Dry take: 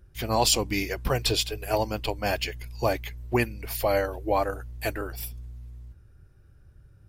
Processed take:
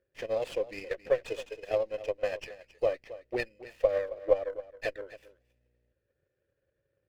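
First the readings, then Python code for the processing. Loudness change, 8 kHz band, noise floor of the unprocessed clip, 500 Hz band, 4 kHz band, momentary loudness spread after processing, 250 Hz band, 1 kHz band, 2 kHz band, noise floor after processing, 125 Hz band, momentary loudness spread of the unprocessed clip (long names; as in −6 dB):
−5.5 dB, below −25 dB, −55 dBFS, −1.0 dB, −19.0 dB, 11 LU, −14.0 dB, −14.5 dB, −8.5 dB, −81 dBFS, −20.5 dB, 12 LU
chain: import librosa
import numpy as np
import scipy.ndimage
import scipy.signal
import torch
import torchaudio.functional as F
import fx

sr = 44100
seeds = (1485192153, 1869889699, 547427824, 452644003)

p1 = fx.vowel_filter(x, sr, vowel='e')
p2 = fx.transient(p1, sr, attack_db=8, sustain_db=-2)
p3 = p2 + fx.echo_single(p2, sr, ms=270, db=-16.0, dry=0)
y = fx.running_max(p3, sr, window=5)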